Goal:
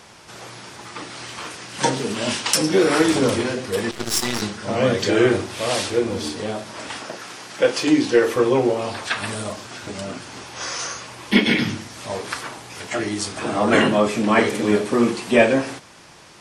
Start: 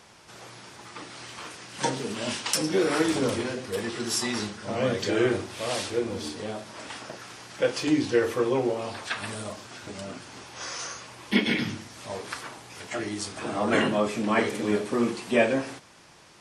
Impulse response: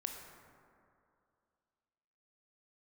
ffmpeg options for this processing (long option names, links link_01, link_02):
-filter_complex "[0:a]asettb=1/sr,asplit=3[link_01][link_02][link_03];[link_01]atrim=end=7.014[link_04];[link_02]atrim=start=7.01:end=8.36,asetpts=PTS-STARTPTS,afade=type=in:duration=0.004:curve=qsin,afade=type=out:start_time=1.346:duration=0.004:curve=qsin,highpass=170[link_05];[link_03]atrim=start=8.356[link_06];[link_04][link_05]acrossfade=duration=0.004:curve1=hsin:curve2=qsin[link_07];[link_07][link_06]acrossfade=duration=0.004:curve1=qsin:curve2=hsin,asplit=2[link_08][link_09];[link_09]aeval=exprs='clip(val(0),-1,0.15)':channel_layout=same,volume=-7dB[link_10];[link_08][link_10]amix=inputs=2:normalize=0,asettb=1/sr,asplit=3[link_11][link_12][link_13];[link_11]atrim=end=3.914[link_14];[link_12]atrim=start=3.91:end=4.42,asetpts=PTS-STARTPTS,afade=type=in:duration=0.004:curve=qsin,afade=type=out:start_time=0.506:duration=0.004:curve=qsin,aeval=exprs='0.282*(cos(1*acos(clip(val(0)/0.282,-1,1)))-cos(1*PI/2))+0.0355*(cos(7*acos(clip(val(0)/0.282,-1,1)))-cos(7*PI/2))+0.02*(cos(8*acos(clip(val(0)/0.282,-1,1)))-cos(8*PI/2))':channel_layout=same[link_15];[link_13]atrim=start=4.416[link_16];[link_14][link_15]acrossfade=duration=0.004:curve1=hsin:curve2=qsin[link_17];[link_17][link_16]acrossfade=duration=0.004:curve1=qsin:curve2=hsin,volume=4dB"